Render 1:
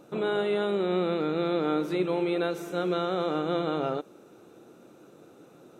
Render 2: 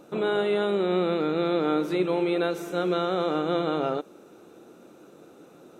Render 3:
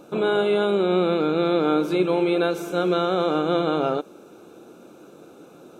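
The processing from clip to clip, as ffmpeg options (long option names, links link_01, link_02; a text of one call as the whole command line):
ffmpeg -i in.wav -af "equalizer=frequency=120:width=3.1:gain=-7,volume=2.5dB" out.wav
ffmpeg -i in.wav -af "asuperstop=centerf=1900:order=8:qfactor=6.2,volume=4dB" out.wav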